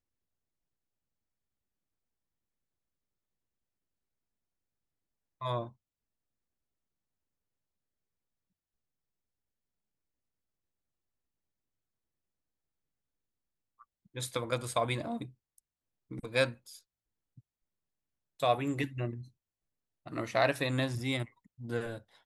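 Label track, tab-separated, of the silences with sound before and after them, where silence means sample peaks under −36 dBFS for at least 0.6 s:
5.670000	14.160000	silence
15.240000	16.120000	silence
16.510000	18.430000	silence
19.170000	20.070000	silence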